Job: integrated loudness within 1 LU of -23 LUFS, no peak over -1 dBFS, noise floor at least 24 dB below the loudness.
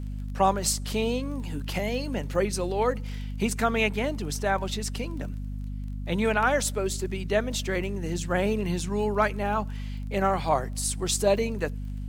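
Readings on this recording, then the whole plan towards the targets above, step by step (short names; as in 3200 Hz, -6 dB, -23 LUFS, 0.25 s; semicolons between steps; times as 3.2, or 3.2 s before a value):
ticks 22/s; hum 50 Hz; harmonics up to 250 Hz; hum level -31 dBFS; loudness -27.5 LUFS; peak -9.5 dBFS; loudness target -23.0 LUFS
-> de-click; de-hum 50 Hz, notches 5; gain +4.5 dB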